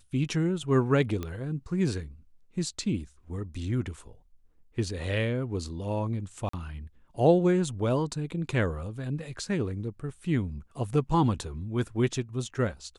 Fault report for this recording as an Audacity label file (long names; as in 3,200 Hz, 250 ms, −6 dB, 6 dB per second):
1.230000	1.230000	click −20 dBFS
6.490000	6.530000	drop-out 44 ms